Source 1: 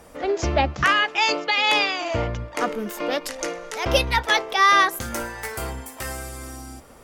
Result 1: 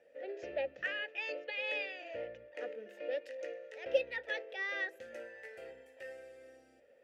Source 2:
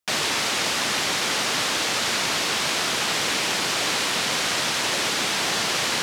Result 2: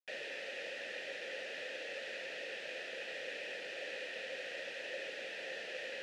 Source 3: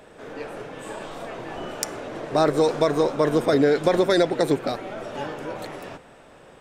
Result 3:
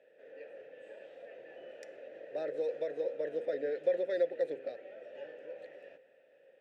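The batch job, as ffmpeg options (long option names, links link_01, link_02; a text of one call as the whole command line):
ffmpeg -i in.wav -filter_complex "[0:a]asplit=3[link_01][link_02][link_03];[link_01]bandpass=frequency=530:width_type=q:width=8,volume=0dB[link_04];[link_02]bandpass=frequency=1840:width_type=q:width=8,volume=-6dB[link_05];[link_03]bandpass=frequency=2480:width_type=q:width=8,volume=-9dB[link_06];[link_04][link_05][link_06]amix=inputs=3:normalize=0,bandreject=frequency=68.05:width_type=h:width=4,bandreject=frequency=136.1:width_type=h:width=4,bandreject=frequency=204.15:width_type=h:width=4,bandreject=frequency=272.2:width_type=h:width=4,bandreject=frequency=340.25:width_type=h:width=4,bandreject=frequency=408.3:width_type=h:width=4,bandreject=frequency=476.35:width_type=h:width=4,volume=-6.5dB" out.wav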